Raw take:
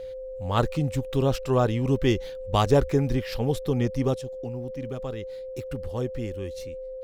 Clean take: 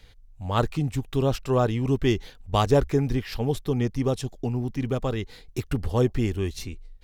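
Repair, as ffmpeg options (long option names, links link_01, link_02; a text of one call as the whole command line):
ffmpeg -i in.wav -af "bandreject=frequency=520:width=30,asetnsamples=nb_out_samples=441:pad=0,asendcmd='4.14 volume volume 8dB',volume=0dB" out.wav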